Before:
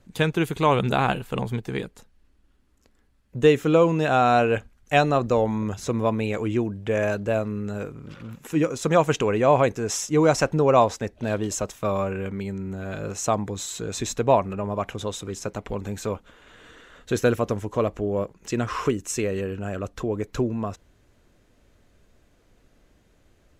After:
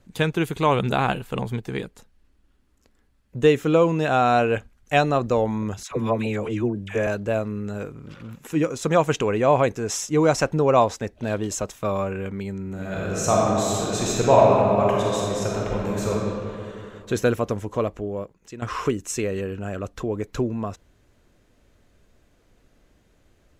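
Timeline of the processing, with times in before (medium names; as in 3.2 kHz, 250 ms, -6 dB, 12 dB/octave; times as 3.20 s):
5.83–7.07 s: phase dispersion lows, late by 83 ms, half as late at 810 Hz
12.67–16.12 s: reverb throw, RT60 2.7 s, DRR -4.5 dB
17.73–18.62 s: fade out linear, to -15 dB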